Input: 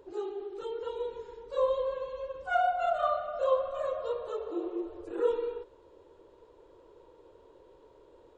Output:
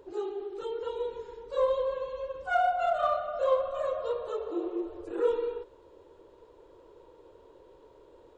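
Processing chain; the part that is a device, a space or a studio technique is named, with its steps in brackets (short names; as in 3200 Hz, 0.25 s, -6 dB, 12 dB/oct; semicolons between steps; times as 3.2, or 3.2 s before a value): parallel distortion (in parallel at -12.5 dB: hard clip -28 dBFS, distortion -9 dB)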